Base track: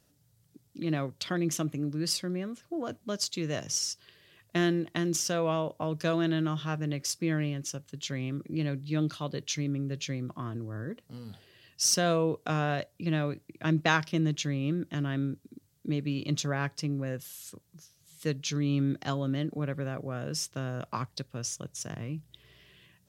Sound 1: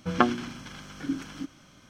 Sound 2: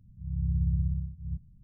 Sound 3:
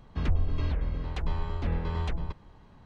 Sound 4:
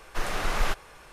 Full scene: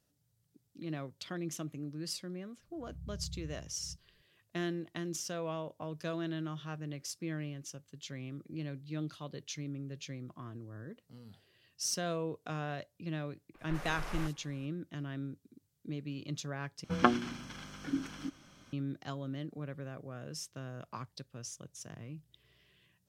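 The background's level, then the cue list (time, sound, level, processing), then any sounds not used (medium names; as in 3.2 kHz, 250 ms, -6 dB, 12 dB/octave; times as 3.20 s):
base track -9.5 dB
2.59 s: add 2 -17 dB
13.54 s: add 4 -13 dB + bands offset in time lows, highs 50 ms, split 4 kHz
16.84 s: replace with 1 -4 dB
not used: 3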